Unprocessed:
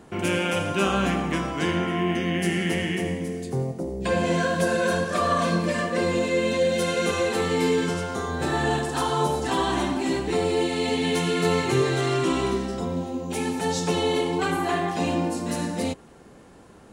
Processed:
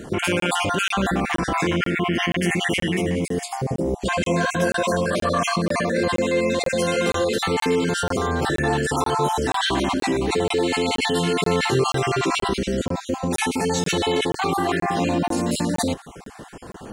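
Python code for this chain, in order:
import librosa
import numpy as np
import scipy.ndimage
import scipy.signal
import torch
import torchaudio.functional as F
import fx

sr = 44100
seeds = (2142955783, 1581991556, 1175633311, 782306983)

p1 = fx.spec_dropout(x, sr, seeds[0], share_pct=31)
p2 = fx.over_compress(p1, sr, threshold_db=-34.0, ratio=-1.0)
p3 = p1 + (p2 * librosa.db_to_amplitude(2.0))
p4 = fx.buffer_crackle(p3, sr, first_s=0.4, period_s=0.48, block=1024, kind='zero')
y = p4 * librosa.db_to_amplitude(1.0)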